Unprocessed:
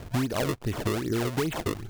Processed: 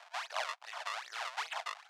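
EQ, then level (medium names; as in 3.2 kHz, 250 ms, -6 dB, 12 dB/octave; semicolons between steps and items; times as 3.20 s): steep high-pass 700 Hz 48 dB/octave; low-pass 5.3 kHz 12 dB/octave; -3.0 dB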